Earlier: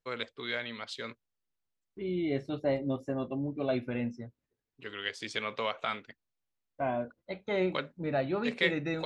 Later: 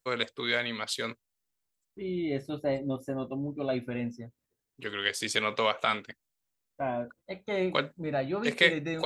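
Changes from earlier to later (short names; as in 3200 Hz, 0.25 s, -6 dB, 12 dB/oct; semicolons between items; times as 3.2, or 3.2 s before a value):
first voice +6.0 dB; master: remove LPF 5000 Hz 12 dB/oct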